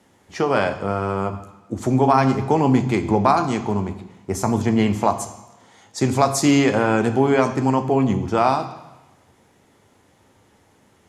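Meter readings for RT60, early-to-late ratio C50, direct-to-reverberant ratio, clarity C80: 1.0 s, 12.0 dB, 7.0 dB, 13.5 dB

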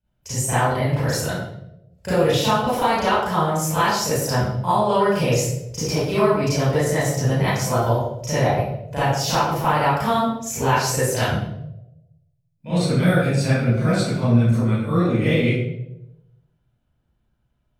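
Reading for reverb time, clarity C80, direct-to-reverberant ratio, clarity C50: 0.85 s, 2.0 dB, -13.0 dB, -5.5 dB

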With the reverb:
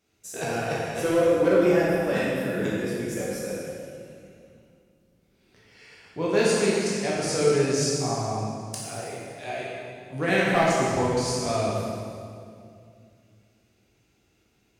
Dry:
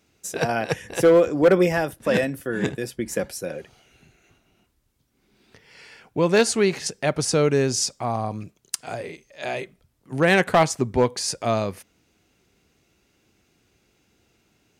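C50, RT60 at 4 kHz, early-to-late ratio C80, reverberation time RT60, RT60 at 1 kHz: -2.0 dB, 1.9 s, -0.5 dB, 2.3 s, 2.1 s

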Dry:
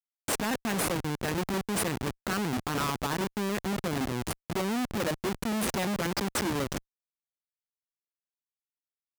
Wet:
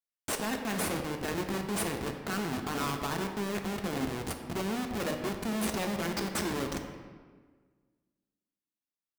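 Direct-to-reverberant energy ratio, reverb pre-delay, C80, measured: 3.5 dB, 3 ms, 7.5 dB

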